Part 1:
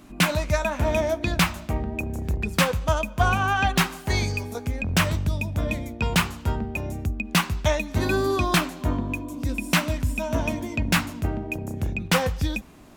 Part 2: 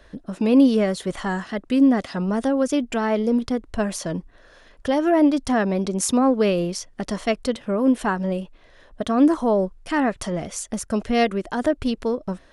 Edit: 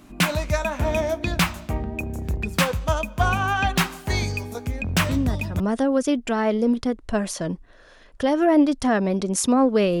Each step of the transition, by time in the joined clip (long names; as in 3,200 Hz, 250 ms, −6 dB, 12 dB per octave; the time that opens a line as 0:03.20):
part 1
0:05.09: mix in part 2 from 0:01.74 0.51 s −9.5 dB
0:05.60: continue with part 2 from 0:02.25